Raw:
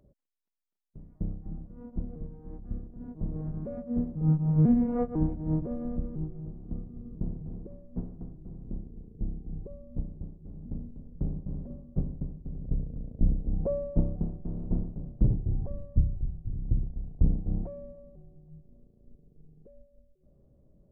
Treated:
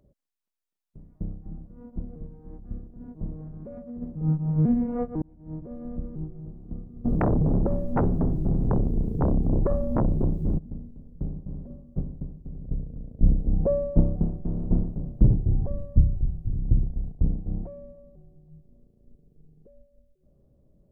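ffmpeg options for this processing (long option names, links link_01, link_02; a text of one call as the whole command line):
ffmpeg -i in.wav -filter_complex "[0:a]asplit=3[link_01][link_02][link_03];[link_01]afade=type=out:start_time=3.33:duration=0.02[link_04];[link_02]acompressor=threshold=-35dB:ratio=6:attack=3.2:release=140:knee=1:detection=peak,afade=type=in:start_time=3.33:duration=0.02,afade=type=out:start_time=4.01:duration=0.02[link_05];[link_03]afade=type=in:start_time=4.01:duration=0.02[link_06];[link_04][link_05][link_06]amix=inputs=3:normalize=0,asplit=3[link_07][link_08][link_09];[link_07]afade=type=out:start_time=7.04:duration=0.02[link_10];[link_08]aeval=exprs='0.126*sin(PI/2*7.94*val(0)/0.126)':channel_layout=same,afade=type=in:start_time=7.04:duration=0.02,afade=type=out:start_time=10.57:duration=0.02[link_11];[link_09]afade=type=in:start_time=10.57:duration=0.02[link_12];[link_10][link_11][link_12]amix=inputs=3:normalize=0,asettb=1/sr,asplit=3[link_13][link_14][link_15];[link_13]atrim=end=13.234[link_16];[link_14]atrim=start=13.23:end=17.12,asetpts=PTS-STARTPTS,afade=type=in:duration=0.004:curve=qsin,afade=type=out:start_time=3.886:duration=0.004:curve=qsin,acontrast=59[link_17];[link_15]atrim=start=17.116[link_18];[link_16][link_17]acrossfade=duration=0.004:curve1=hsin:curve2=qsin[link_19];[link_19][link_18]acrossfade=duration=0.004:curve1=qsin:curve2=hsin,asplit=2[link_20][link_21];[link_20]atrim=end=5.22,asetpts=PTS-STARTPTS,afade=type=out:start_time=5.216:duration=0.004:curve=hsin[link_22];[link_21]atrim=start=5.22,asetpts=PTS-STARTPTS,afade=type=in:duration=0.85[link_23];[link_22][link_23]concat=n=2:v=0:a=1" out.wav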